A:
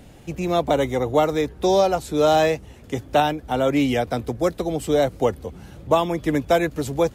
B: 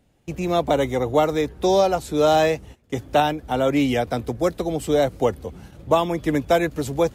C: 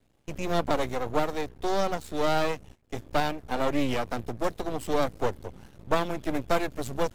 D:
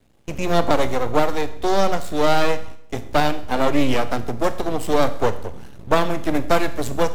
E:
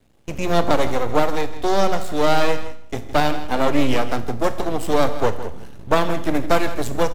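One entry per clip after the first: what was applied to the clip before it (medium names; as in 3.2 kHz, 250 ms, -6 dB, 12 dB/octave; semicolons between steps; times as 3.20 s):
gate -40 dBFS, range -17 dB
gain riding within 5 dB 2 s; half-wave rectifier; trim -4 dB
Schroeder reverb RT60 0.65 s, combs from 27 ms, DRR 11.5 dB; trim +7.5 dB
delay 162 ms -14 dB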